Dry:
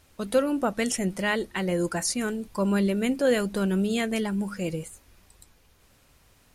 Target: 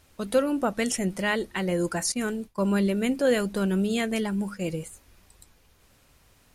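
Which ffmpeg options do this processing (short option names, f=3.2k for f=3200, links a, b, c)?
-filter_complex "[0:a]asettb=1/sr,asplit=3[a][b][c];[a]atrim=end=2.124[d];[b]atrim=start=2.12:end=4.77,asetpts=PTS-STARTPTS,afade=t=in:d=0.004:c=qsin,afade=t=out:st=2.646:d=0.004:c=qsin,agate=range=-33dB:threshold=-31dB:ratio=3:detection=peak[e];[c]atrim=start=4.766[f];[d][e]acrossfade=d=0.004:c1=hsin:c2=qsin[g];[g][f]acrossfade=d=0.004:c1=qsin:c2=hsin"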